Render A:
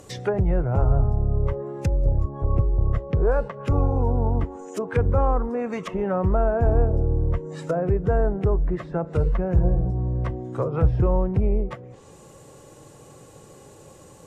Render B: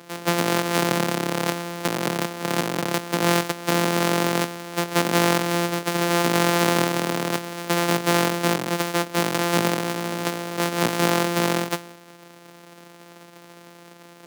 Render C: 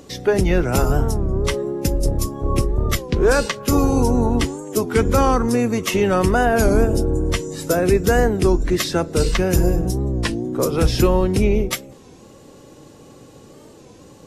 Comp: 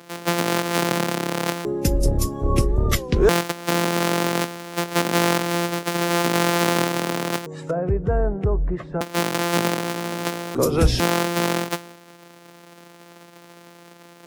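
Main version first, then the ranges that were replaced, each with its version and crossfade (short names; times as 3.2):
B
1.65–3.29 from C
7.46–9.01 from A
10.55–11 from C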